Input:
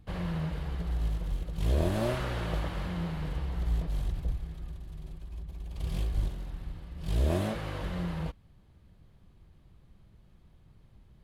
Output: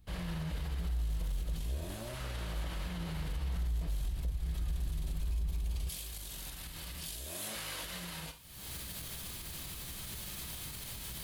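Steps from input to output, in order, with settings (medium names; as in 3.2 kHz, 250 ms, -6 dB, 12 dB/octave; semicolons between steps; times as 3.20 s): recorder AGC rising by 54 dB/s; pre-emphasis filter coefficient 0.9; reverberation, pre-delay 3 ms, DRR 8 dB; peak limiter -39.5 dBFS, peak gain reduction 9 dB; tilt EQ -1.5 dB/octave, from 5.88 s +1.5 dB/octave; trim +6.5 dB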